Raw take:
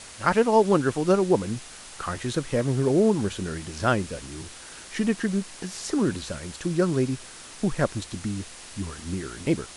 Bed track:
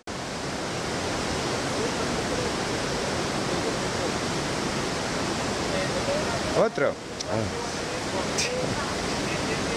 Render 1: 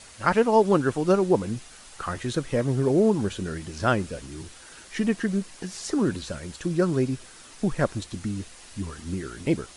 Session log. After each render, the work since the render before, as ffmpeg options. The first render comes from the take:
-af "afftdn=nr=6:nf=-44"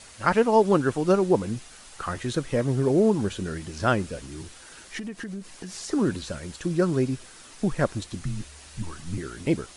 -filter_complex "[0:a]asettb=1/sr,asplit=3[a][b][c];[a]atrim=end=4.984[d];[b]atrim=start=4.98:end=5.93,asetpts=PTS-STARTPTS,afade=t=in:d=0.004:c=qsin,afade=t=out:st=0.946:d=0.004:c=qsin,acompressor=threshold=-32dB:ratio=6:attack=3.2:release=140:knee=1:detection=peak[e];[c]atrim=start=5.926[f];[d][e]acrossfade=d=0.004:c1=hsin:c2=qsin[g];[g][f]acrossfade=d=0.004:c1=qsin:c2=hsin,asettb=1/sr,asplit=3[h][i][j];[h]atrim=end=8.214[k];[i]atrim=start=8.21:end=9.18,asetpts=PTS-STARTPTS,afade=t=in:d=0.004:c=qsin,afade=t=out:st=0.966:d=0.004:c=qsin,afreqshift=-81[l];[j]atrim=start=9.176[m];[k][l]acrossfade=d=0.004:c1=hsin:c2=qsin[n];[n][m]acrossfade=d=0.004:c1=qsin:c2=hsin"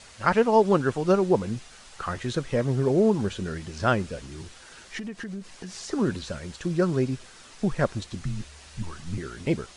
-af "lowpass=7.3k,equalizer=f=300:t=o:w=0.23:g=-6"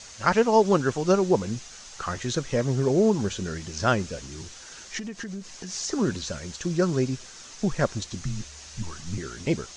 -af "lowpass=f=6.4k:t=q:w=3.5"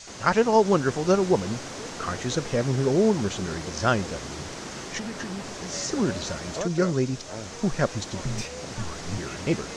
-filter_complex "[1:a]volume=-10dB[a];[0:a][a]amix=inputs=2:normalize=0"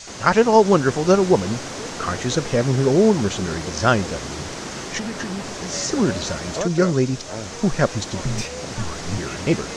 -af "volume=5.5dB,alimiter=limit=-1dB:level=0:latency=1"

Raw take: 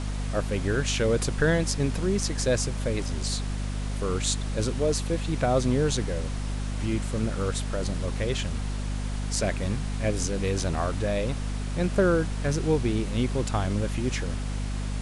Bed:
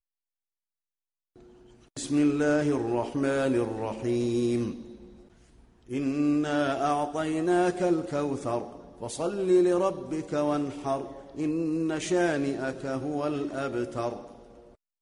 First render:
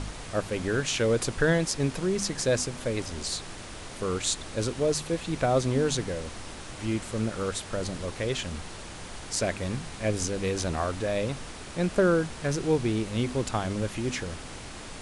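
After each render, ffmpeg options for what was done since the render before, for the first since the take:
-af "bandreject=f=50:t=h:w=4,bandreject=f=100:t=h:w=4,bandreject=f=150:t=h:w=4,bandreject=f=200:t=h:w=4,bandreject=f=250:t=h:w=4"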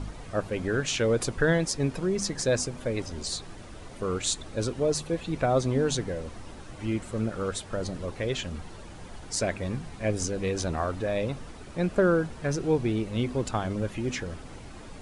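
-af "afftdn=nr=10:nf=-41"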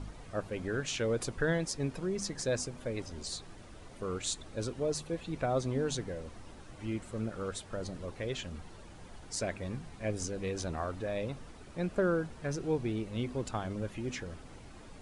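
-af "volume=-7dB"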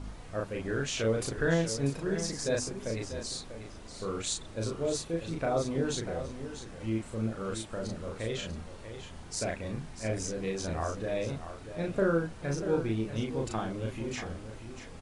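-filter_complex "[0:a]asplit=2[a][b];[b]adelay=36,volume=-2dB[c];[a][c]amix=inputs=2:normalize=0,aecho=1:1:641:0.299"

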